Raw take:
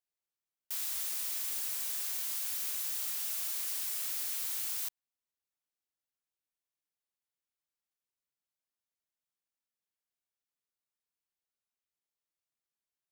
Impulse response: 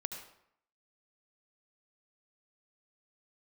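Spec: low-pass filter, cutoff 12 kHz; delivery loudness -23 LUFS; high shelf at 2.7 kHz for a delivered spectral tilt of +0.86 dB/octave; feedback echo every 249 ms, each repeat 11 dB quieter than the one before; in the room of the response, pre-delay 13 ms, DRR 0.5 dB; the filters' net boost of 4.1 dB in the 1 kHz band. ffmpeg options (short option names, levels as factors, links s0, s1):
-filter_complex "[0:a]lowpass=12000,equalizer=f=1000:t=o:g=6.5,highshelf=f=2700:g=-7.5,aecho=1:1:249|498|747:0.282|0.0789|0.0221,asplit=2[s0][s1];[1:a]atrim=start_sample=2205,adelay=13[s2];[s1][s2]afir=irnorm=-1:irlink=0,volume=0.944[s3];[s0][s3]amix=inputs=2:normalize=0,volume=8.41"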